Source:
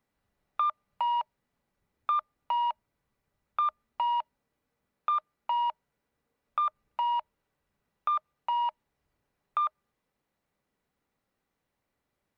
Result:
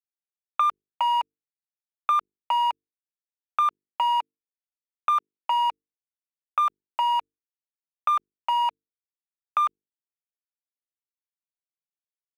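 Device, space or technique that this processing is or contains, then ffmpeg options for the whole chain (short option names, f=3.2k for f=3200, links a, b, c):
pocket radio on a weak battery: -filter_complex "[0:a]highpass=340,lowpass=3.6k,aeval=exprs='sgn(val(0))*max(abs(val(0))-0.00355,0)':c=same,equalizer=f=2.6k:t=o:w=0.77:g=5.5,asettb=1/sr,asplit=3[a][b][c];[a]atrim=end=3.674[d];[b]atrim=start=3.67:end=5.51,asetpts=PTS-STARTPTS,afade=t=in:d=0.004:c=qsin,afade=t=out:st=1.836:d=0.004:c=qsin,highpass=150[e];[c]atrim=start=5.506[f];[d][e]acrossfade=d=0.004:c1=hsin:c2=qsin[g];[g][f]acrossfade=d=0.004:c1=qsin:c2=hsin,bandreject=f=50:t=h:w=6,bandreject=f=100:t=h:w=6,bandreject=f=150:t=h:w=6,bandreject=f=200:t=h:w=6,bandreject=f=250:t=h:w=6,bandreject=f=300:t=h:w=6,bandreject=f=350:t=h:w=6,bandreject=f=400:t=h:w=6,bandreject=f=450:t=h:w=6,volume=5.5dB"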